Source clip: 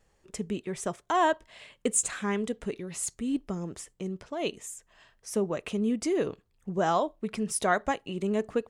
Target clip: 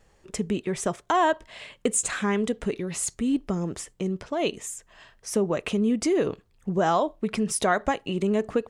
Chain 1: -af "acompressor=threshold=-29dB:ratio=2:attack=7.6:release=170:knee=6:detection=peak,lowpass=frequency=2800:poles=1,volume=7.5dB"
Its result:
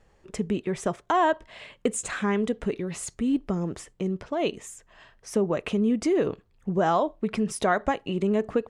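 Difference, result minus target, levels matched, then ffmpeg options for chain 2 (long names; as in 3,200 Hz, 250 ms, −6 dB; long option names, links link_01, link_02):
8,000 Hz band −6.5 dB
-af "acompressor=threshold=-29dB:ratio=2:attack=7.6:release=170:knee=6:detection=peak,lowpass=frequency=8800:poles=1,volume=7.5dB"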